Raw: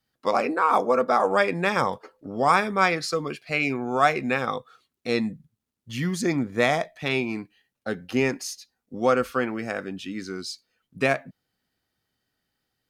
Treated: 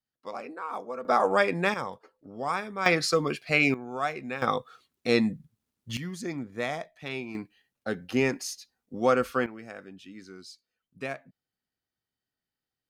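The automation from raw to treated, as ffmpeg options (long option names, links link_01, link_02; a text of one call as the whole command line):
ffmpeg -i in.wav -af "asetnsamples=nb_out_samples=441:pad=0,asendcmd='1.05 volume volume -2dB;1.74 volume volume -10.5dB;2.86 volume volume 2dB;3.74 volume volume -10dB;4.42 volume volume 1.5dB;5.97 volume volume -10dB;7.35 volume volume -2dB;9.46 volume volume -12.5dB',volume=-15dB" out.wav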